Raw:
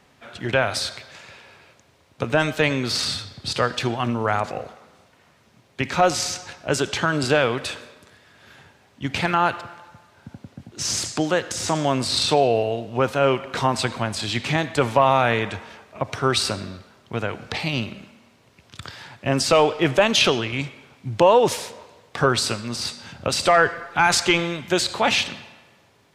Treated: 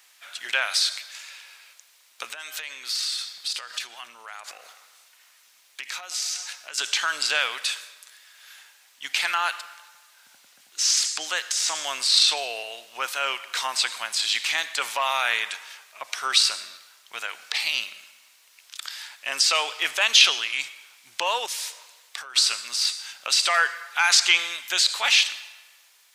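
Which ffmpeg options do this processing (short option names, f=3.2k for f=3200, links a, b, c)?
-filter_complex "[0:a]asettb=1/sr,asplit=3[a][b][c];[a]atrim=end=2.304[d];[b]atrim=start=2.3:end=6.78,asetpts=PTS-STARTPTS,afade=t=in:d=0.004:c=qsin,afade=t=out:st=4.476:d=0.004:c=qsin,acompressor=threshold=-29dB:ratio=6:attack=3.2:release=140:knee=1:detection=peak[e];[c]atrim=start=6.776[f];[d][e]acrossfade=d=0.004:c1=hsin:c2=qsin[g];[g][f]acrossfade=d=0.004:c1=qsin:c2=hsin,asettb=1/sr,asplit=3[h][i][j];[h]atrim=end=21.464[k];[i]atrim=start=21.46:end=22.36,asetpts=PTS-STARTPTS,afade=t=in:d=0.004:c=qsin,afade=t=out:st=0.896:d=0.004:c=qsin,acompressor=threshold=-30dB:ratio=6:attack=3.2:release=140:knee=1:detection=peak[l];[j]atrim=start=22.356[m];[k][l]acrossfade=d=0.004:c1=hsin:c2=qsin[n];[n][m]acrossfade=d=0.004:c1=qsin:c2=hsin,acrossover=split=6200[o][p];[p]acompressor=threshold=-45dB:ratio=4:attack=1:release=60[q];[o][q]amix=inputs=2:normalize=0,highpass=1.4k,aemphasis=mode=production:type=75kf,volume=-1dB"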